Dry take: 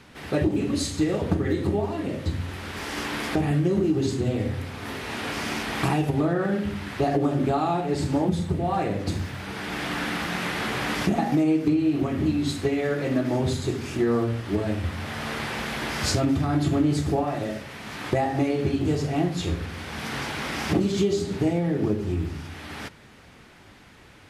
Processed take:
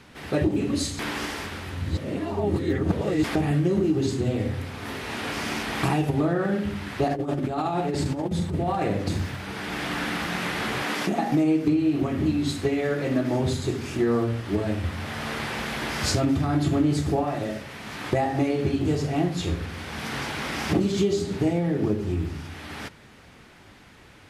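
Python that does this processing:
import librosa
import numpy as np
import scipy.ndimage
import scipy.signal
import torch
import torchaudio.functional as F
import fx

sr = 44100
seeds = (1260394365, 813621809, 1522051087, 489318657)

y = fx.over_compress(x, sr, threshold_db=-25.0, ratio=-0.5, at=(7.08, 9.36))
y = fx.highpass(y, sr, hz=220.0, slope=12, at=(10.82, 11.31))
y = fx.edit(y, sr, fx.reverse_span(start_s=0.99, length_s=2.25), tone=tone)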